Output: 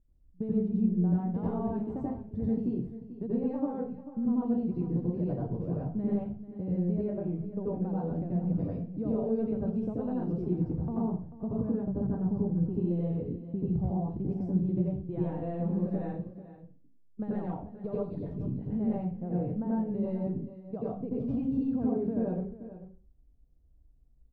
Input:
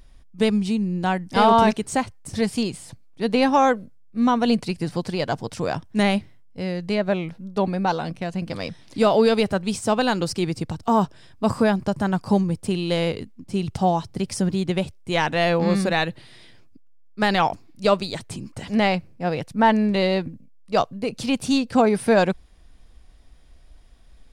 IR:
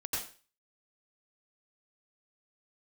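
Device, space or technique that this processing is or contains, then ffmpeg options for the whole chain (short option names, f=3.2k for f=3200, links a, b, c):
television next door: -filter_complex "[0:a]agate=range=-16dB:threshold=-34dB:ratio=16:detection=peak,highshelf=f=5.9k:g=9.5,acompressor=threshold=-27dB:ratio=4,lowpass=340[a];[1:a]atrim=start_sample=2205[b];[a][b]afir=irnorm=-1:irlink=0,aecho=1:1:440:0.2"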